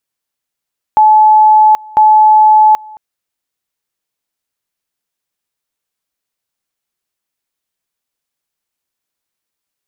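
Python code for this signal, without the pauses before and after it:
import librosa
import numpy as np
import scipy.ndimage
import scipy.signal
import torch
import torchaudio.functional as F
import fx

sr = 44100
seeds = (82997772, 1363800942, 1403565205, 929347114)

y = fx.two_level_tone(sr, hz=860.0, level_db=-3.0, drop_db=26.0, high_s=0.78, low_s=0.22, rounds=2)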